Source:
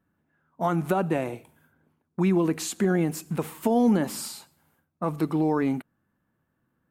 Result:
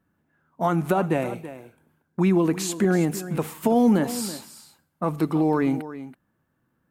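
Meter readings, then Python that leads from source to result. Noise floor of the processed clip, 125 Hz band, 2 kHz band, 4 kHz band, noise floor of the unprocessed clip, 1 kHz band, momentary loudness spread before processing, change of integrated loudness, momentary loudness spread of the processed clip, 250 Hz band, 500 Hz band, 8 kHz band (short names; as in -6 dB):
-73 dBFS, +2.5 dB, +2.5 dB, +2.5 dB, -76 dBFS, +2.5 dB, 12 LU, +2.5 dB, 17 LU, +2.5 dB, +2.5 dB, +2.5 dB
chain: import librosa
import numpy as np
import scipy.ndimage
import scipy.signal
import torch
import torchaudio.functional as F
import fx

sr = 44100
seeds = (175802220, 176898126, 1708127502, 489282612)

y = x + 10.0 ** (-14.0 / 20.0) * np.pad(x, (int(329 * sr / 1000.0), 0))[:len(x)]
y = y * 10.0 ** (2.5 / 20.0)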